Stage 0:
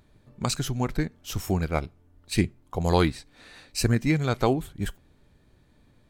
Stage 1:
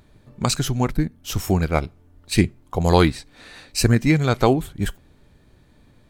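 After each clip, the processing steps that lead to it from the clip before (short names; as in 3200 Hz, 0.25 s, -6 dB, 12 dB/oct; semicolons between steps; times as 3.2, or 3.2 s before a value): spectral gain 0.91–1.25, 340–8400 Hz -8 dB; gain +6 dB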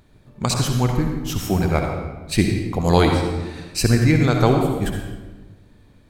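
reverb RT60 1.3 s, pre-delay 57 ms, DRR 2.5 dB; gain -1 dB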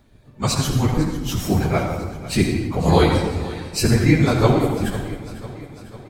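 phase scrambler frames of 50 ms; feedback echo 0.499 s, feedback 60%, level -16.5 dB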